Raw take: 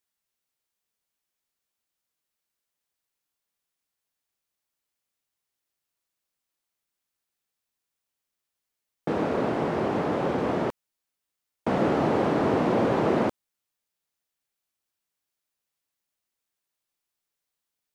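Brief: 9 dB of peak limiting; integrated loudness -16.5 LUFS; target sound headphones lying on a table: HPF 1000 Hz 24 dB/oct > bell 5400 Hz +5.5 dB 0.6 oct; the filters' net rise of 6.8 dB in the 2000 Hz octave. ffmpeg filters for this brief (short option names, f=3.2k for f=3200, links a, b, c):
-af "equalizer=f=2k:t=o:g=8.5,alimiter=limit=-19dB:level=0:latency=1,highpass=f=1k:w=0.5412,highpass=f=1k:w=1.3066,equalizer=f=5.4k:t=o:w=0.6:g=5.5,volume=18.5dB"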